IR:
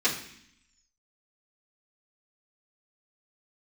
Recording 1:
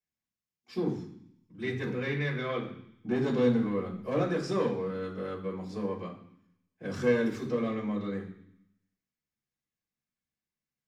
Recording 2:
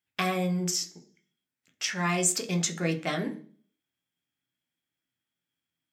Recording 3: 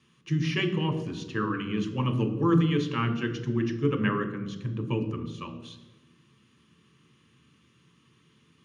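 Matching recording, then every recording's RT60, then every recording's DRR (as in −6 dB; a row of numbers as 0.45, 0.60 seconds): 1; 0.65, 0.40, 1.1 seconds; −10.5, 5.0, 4.5 decibels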